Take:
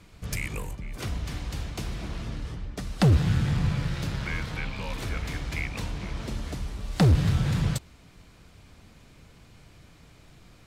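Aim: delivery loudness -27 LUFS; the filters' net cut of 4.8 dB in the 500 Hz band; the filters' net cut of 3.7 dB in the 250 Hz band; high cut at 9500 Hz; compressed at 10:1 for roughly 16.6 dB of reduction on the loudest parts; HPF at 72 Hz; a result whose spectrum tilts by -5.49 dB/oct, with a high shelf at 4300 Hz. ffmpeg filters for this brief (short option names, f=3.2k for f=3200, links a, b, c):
-af "highpass=72,lowpass=9.5k,equalizer=f=250:t=o:g=-6,equalizer=f=500:t=o:g=-4,highshelf=f=4.3k:g=-8.5,acompressor=threshold=-35dB:ratio=10,volume=13.5dB"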